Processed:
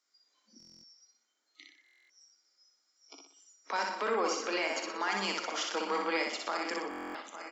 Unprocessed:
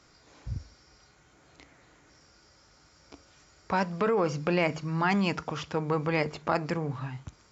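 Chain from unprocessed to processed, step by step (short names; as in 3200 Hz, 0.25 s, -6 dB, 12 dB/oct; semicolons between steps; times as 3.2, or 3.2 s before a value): regenerating reverse delay 0.426 s, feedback 61%, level -13 dB; spectral noise reduction 23 dB; steep high-pass 210 Hz 96 dB/oct; tilt +3.5 dB/oct; notch 2600 Hz, Q 12; limiter -21 dBFS, peak gain reduction 8 dB; feedback echo 61 ms, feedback 44%, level -3.5 dB; stuck buffer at 0.58/1.84/6.89, samples 1024, times 10; gain -2 dB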